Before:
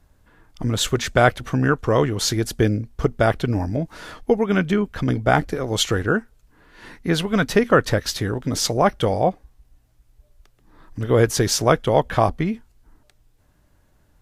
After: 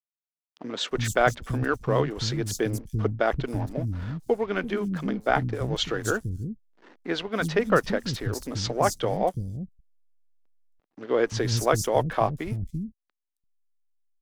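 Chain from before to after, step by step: hysteresis with a dead band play -34 dBFS; three bands offset in time mids, highs, lows 270/340 ms, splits 230/6000 Hz; trim -5 dB

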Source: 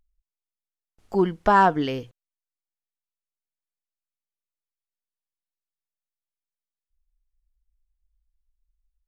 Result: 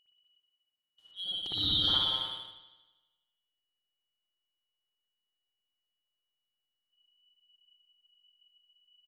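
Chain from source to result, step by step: four frequency bands reordered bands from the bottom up 2413; slow attack 701 ms; on a send: loudspeakers at several distances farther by 63 m -6 dB, 95 m -11 dB; on the sum: spring tank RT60 1.2 s, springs 58 ms, chirp 35 ms, DRR -7.5 dB; in parallel at -7 dB: hysteresis with a dead band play -34.5 dBFS; on the sum: trim -7 dB

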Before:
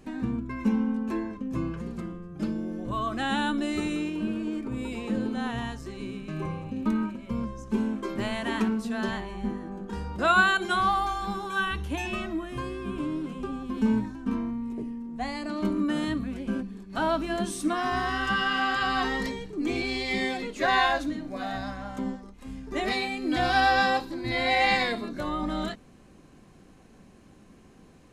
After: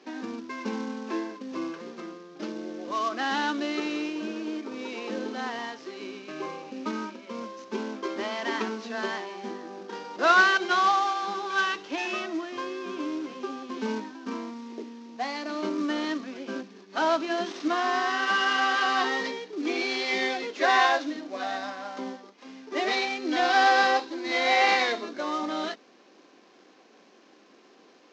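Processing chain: CVSD coder 32 kbps; high-pass 310 Hz 24 dB/octave; trim +2.5 dB

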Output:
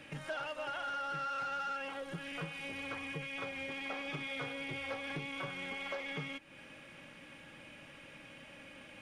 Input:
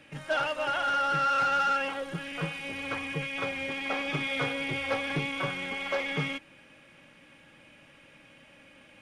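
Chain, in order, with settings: compression 3:1, threshold -44 dBFS, peak gain reduction 14.5 dB; trim +2 dB

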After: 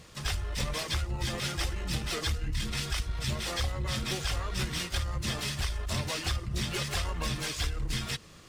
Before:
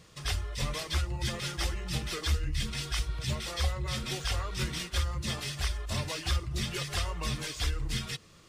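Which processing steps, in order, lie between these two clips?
in parallel at -5.5 dB: one-sided clip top -40 dBFS, bottom -24.5 dBFS; on the sum: harmony voices -12 st -10 dB, +7 st -12 dB; compression, threshold -27 dBFS, peak gain reduction 7.5 dB

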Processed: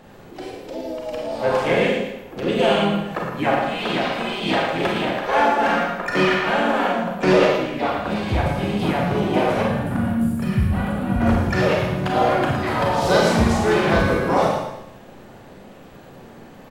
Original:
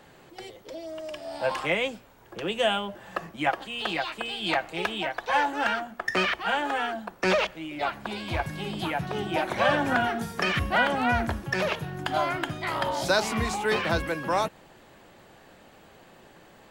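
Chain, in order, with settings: tilt shelf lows +4.5 dB, about 790 Hz; on a send: feedback delay 113 ms, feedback 38%, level -7 dB; on the sum: time-frequency box 9.62–11.21 s, 250–8700 Hz -14 dB; harmony voices -4 st -4 dB, +5 st -12 dB; in parallel at -7.5 dB: hard clipper -22 dBFS, distortion -10 dB; on the sum: Schroeder reverb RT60 0.57 s, combs from 31 ms, DRR -0.5 dB

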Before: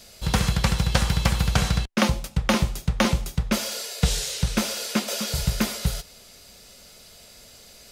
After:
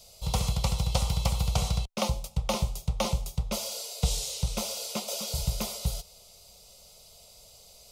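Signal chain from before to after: static phaser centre 690 Hz, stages 4; trim -3.5 dB

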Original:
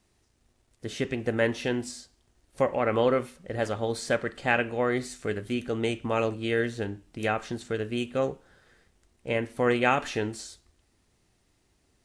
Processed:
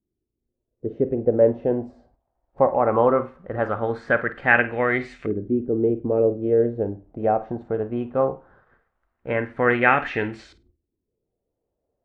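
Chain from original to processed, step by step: gate -59 dBFS, range -8 dB; LFO low-pass saw up 0.19 Hz 320–2400 Hz; spectral noise reduction 9 dB; on a send: flutter echo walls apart 8.7 m, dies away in 0.21 s; on the sum: trim +3 dB

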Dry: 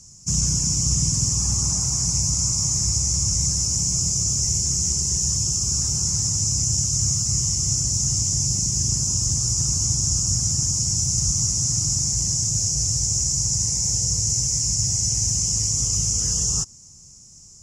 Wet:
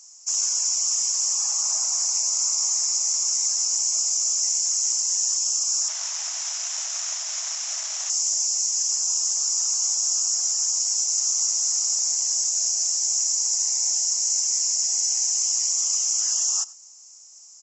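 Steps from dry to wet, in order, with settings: 5.88–8.10 s: median filter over 5 samples; brick-wall FIR band-pass 590–7800 Hz; delay 96 ms -20.5 dB

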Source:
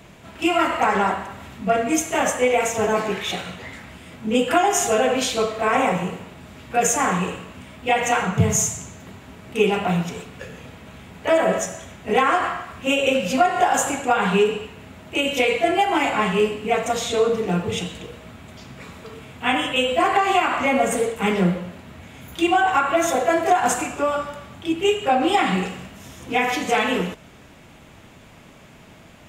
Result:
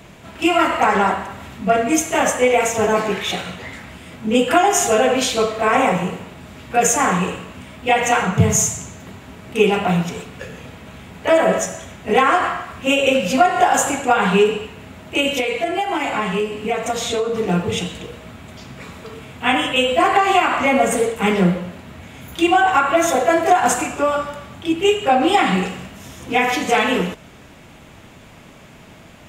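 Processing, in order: 15.30–17.36 s: compression, threshold -21 dBFS, peak gain reduction 8 dB; trim +3.5 dB

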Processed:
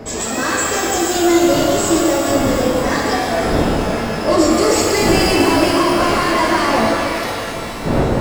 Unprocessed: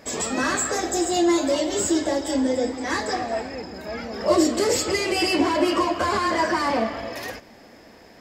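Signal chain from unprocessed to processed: wind noise 440 Hz -29 dBFS; pitch-shifted reverb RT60 3.2 s, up +12 st, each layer -8 dB, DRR -1 dB; trim +3 dB

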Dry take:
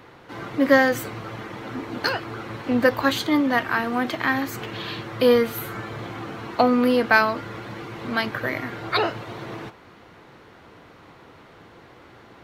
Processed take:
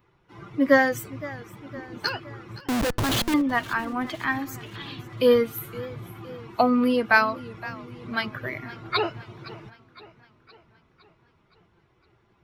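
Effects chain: expander on every frequency bin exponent 1.5; 2.60–3.34 s: Schmitt trigger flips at -31 dBFS; modulated delay 514 ms, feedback 54%, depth 121 cents, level -18 dB

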